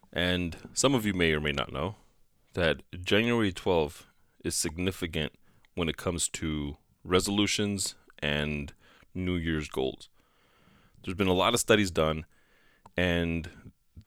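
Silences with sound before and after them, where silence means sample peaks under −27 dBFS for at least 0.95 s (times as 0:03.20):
0:09.90–0:11.08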